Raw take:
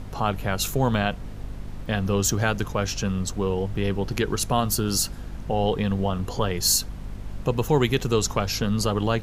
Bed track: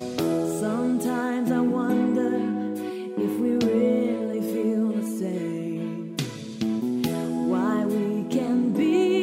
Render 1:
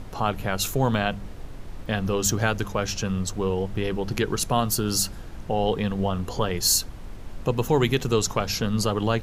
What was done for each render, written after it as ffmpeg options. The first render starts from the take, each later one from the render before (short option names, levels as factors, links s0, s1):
-af "bandreject=f=50:t=h:w=4,bandreject=f=100:t=h:w=4,bandreject=f=150:t=h:w=4,bandreject=f=200:t=h:w=4,bandreject=f=250:t=h:w=4"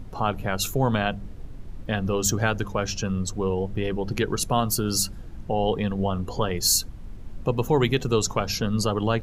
-af "afftdn=nr=9:nf=-38"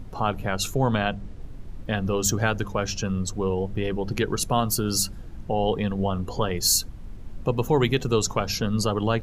-filter_complex "[0:a]asettb=1/sr,asplit=3[s0][s1][s2];[s0]atrim=end=0.504[s3];[s1]atrim=start=0.5:end=1.42,asetpts=PTS-STARTPTS,afade=t=in:d=0.004:c=qsin,afade=t=out:st=0.916:d=0.004:c=qsin,lowpass=10000[s4];[s2]atrim=start=1.416[s5];[s3][s4]acrossfade=d=0.004:c1=hsin:c2=qsin[s6];[s6][s5]acrossfade=d=0.004:c1=qsin:c2=hsin"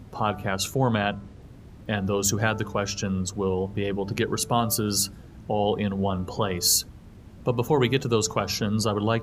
-af "highpass=74,bandreject=f=146.8:t=h:w=4,bandreject=f=293.6:t=h:w=4,bandreject=f=440.4:t=h:w=4,bandreject=f=587.2:t=h:w=4,bandreject=f=734:t=h:w=4,bandreject=f=880.8:t=h:w=4,bandreject=f=1027.6:t=h:w=4,bandreject=f=1174.4:t=h:w=4,bandreject=f=1321.2:t=h:w=4,bandreject=f=1468:t=h:w=4"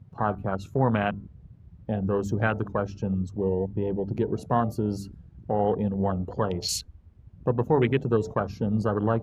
-af "afwtdn=0.0398,highshelf=f=4600:g=-11.5"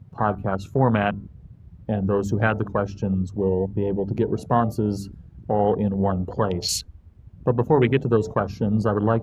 -af "volume=1.58"